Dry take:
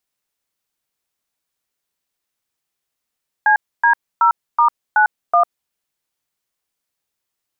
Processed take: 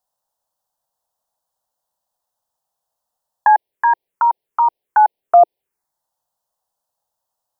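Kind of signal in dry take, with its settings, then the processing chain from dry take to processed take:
touch tones "CD0*91", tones 100 ms, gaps 275 ms, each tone −12 dBFS
flat-topped bell 590 Hz +12.5 dB
phaser swept by the level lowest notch 390 Hz, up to 1,300 Hz, full sweep at −8.5 dBFS

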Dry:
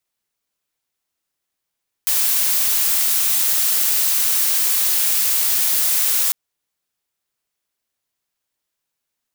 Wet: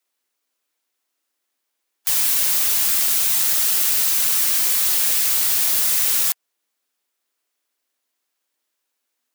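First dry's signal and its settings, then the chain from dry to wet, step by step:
noise blue, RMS −17.5 dBFS 4.25 s
gate on every frequency bin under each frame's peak −20 dB strong
Chebyshev high-pass filter 230 Hz, order 10
in parallel at −6 dB: wrap-around overflow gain 20 dB

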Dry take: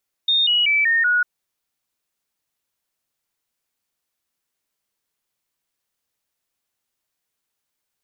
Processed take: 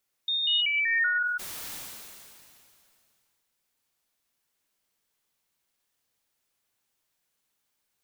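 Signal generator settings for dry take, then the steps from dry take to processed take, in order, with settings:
stepped sweep 3,670 Hz down, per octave 3, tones 5, 0.19 s, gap 0.00 s −14.5 dBFS
brickwall limiter −24.5 dBFS
reverb whose tail is shaped and stops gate 160 ms rising, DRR 4 dB
level that may fall only so fast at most 23 dB per second

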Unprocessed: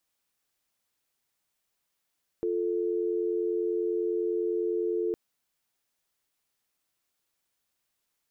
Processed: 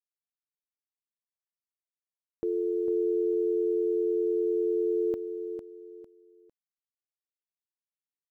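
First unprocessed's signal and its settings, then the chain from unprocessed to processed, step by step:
call progress tone dial tone, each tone −28.5 dBFS 2.71 s
centre clipping without the shift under −59 dBFS
repeating echo 452 ms, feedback 29%, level −8 dB

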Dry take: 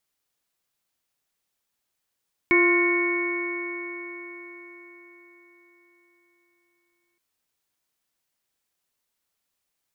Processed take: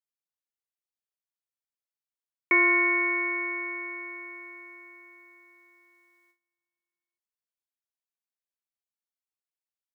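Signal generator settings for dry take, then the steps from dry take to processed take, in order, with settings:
stiff-string partials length 4.67 s, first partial 346 Hz, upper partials −19/−9/−18/−12/1 dB, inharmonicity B 0.0039, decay 4.71 s, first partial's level −18 dB
noise gate with hold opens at −55 dBFS
high-pass filter 490 Hz 12 dB per octave

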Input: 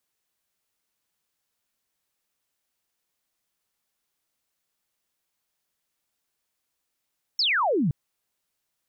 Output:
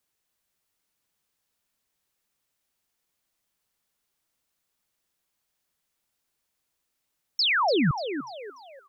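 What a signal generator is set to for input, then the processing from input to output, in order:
single falling chirp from 5,500 Hz, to 130 Hz, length 0.52 s sine, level −20 dB
low-shelf EQ 150 Hz +4 dB
on a send: echo with shifted repeats 293 ms, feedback 38%, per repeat +130 Hz, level −9 dB

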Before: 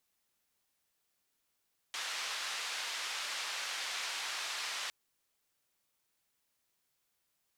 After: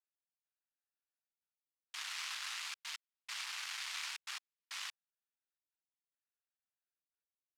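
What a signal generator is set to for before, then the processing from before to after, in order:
band-limited noise 940–4,700 Hz, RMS −39 dBFS 2.96 s
adaptive Wiener filter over 41 samples
high-pass filter 1,000 Hz 24 dB per octave
gate pattern "x...xxxxxxxx." 137 BPM −60 dB

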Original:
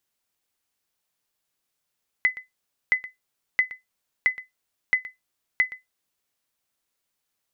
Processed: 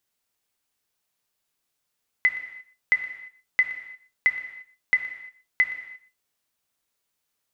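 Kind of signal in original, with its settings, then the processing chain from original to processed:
ping with an echo 2,020 Hz, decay 0.16 s, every 0.67 s, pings 6, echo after 0.12 s, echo −17 dB −11 dBFS
reverb whose tail is shaped and stops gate 370 ms falling, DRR 6.5 dB

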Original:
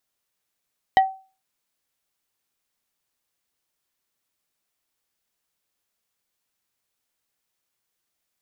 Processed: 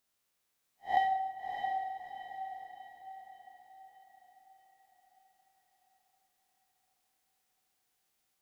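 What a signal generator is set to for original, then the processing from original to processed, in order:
struck wood plate, lowest mode 766 Hz, decay 0.35 s, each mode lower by 7.5 dB, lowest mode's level −9 dB
spectrum smeared in time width 131 ms
feedback delay with all-pass diffusion 643 ms, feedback 48%, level −5 dB
dense smooth reverb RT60 1.3 s, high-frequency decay 0.75×, DRR 4.5 dB

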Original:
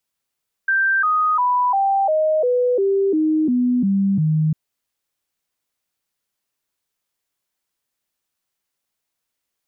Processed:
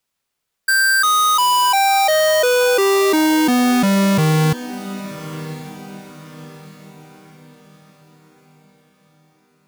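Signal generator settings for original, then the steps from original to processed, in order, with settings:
stepped sweep 1,570 Hz down, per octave 3, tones 11, 0.35 s, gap 0.00 s −14.5 dBFS
each half-wave held at its own peak
feedback delay with all-pass diffusion 1,102 ms, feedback 41%, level −14.5 dB

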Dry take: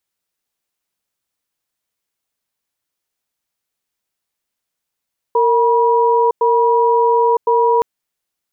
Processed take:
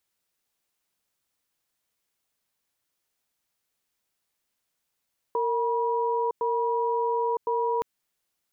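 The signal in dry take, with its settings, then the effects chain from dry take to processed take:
tone pair in a cadence 461 Hz, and 965 Hz, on 0.96 s, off 0.10 s, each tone −13 dBFS 2.47 s
brickwall limiter −17 dBFS
dynamic equaliser 670 Hz, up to −4 dB, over −34 dBFS, Q 0.86

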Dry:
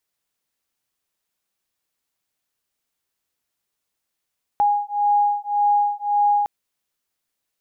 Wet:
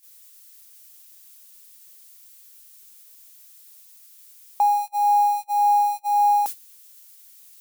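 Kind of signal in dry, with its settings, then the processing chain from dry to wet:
two tones that beat 822 Hz, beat 1.8 Hz, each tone −19.5 dBFS 1.86 s
spike at every zero crossing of −26.5 dBFS
noise gate −27 dBFS, range −30 dB
high-pass filter 200 Hz

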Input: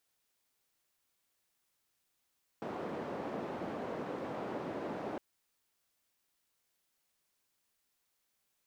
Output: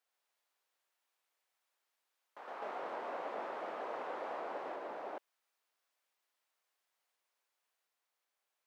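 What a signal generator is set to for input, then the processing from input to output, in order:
band-limited noise 200–580 Hz, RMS −40 dBFS 2.56 s
Chebyshev high-pass filter 640 Hz, order 2
high-shelf EQ 3,500 Hz −10 dB
delay with pitch and tempo change per echo 143 ms, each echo +2 semitones, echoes 2

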